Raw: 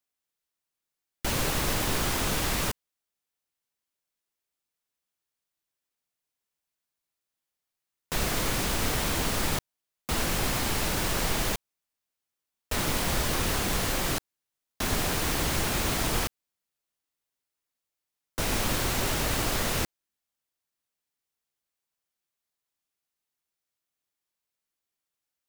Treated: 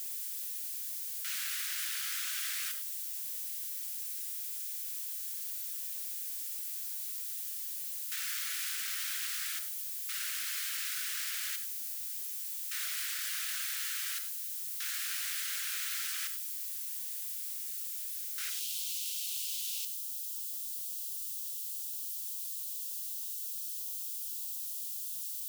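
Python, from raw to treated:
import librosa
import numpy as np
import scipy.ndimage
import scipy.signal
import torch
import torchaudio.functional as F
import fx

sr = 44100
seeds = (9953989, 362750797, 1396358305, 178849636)

y = x + 0.5 * 10.0 ** (-27.5 / 20.0) * np.diff(np.sign(x), prepend=np.sign(x[:1]))
y = fx.steep_highpass(y, sr, hz=fx.steps((0.0, 1400.0), (18.49, 2800.0)), slope=48)
y = fx.rev_gated(y, sr, seeds[0], gate_ms=120, shape='rising', drr_db=9.0)
y = y * librosa.db_to_amplitude(-8.0)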